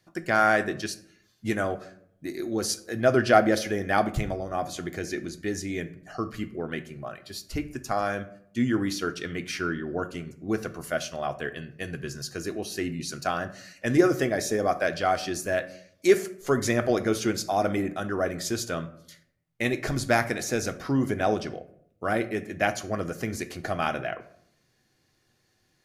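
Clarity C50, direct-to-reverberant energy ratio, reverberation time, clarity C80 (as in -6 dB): 14.5 dB, 8.0 dB, 0.70 s, 18.0 dB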